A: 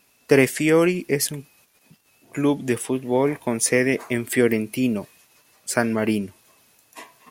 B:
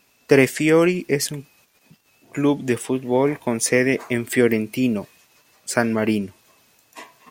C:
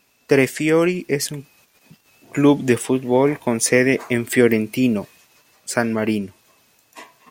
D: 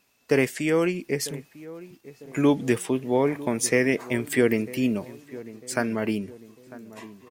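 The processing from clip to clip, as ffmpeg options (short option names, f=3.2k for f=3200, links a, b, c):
-af "equalizer=f=11k:t=o:w=0.32:g=-9,volume=1.5dB"
-af "dynaudnorm=f=640:g=3:m=11.5dB,volume=-1dB"
-filter_complex "[0:a]asplit=2[a][b];[b]adelay=949,lowpass=f=1.1k:p=1,volume=-17dB,asplit=2[c][d];[d]adelay=949,lowpass=f=1.1k:p=1,volume=0.48,asplit=2[e][f];[f]adelay=949,lowpass=f=1.1k:p=1,volume=0.48,asplit=2[g][h];[h]adelay=949,lowpass=f=1.1k:p=1,volume=0.48[i];[a][c][e][g][i]amix=inputs=5:normalize=0,volume=-6dB"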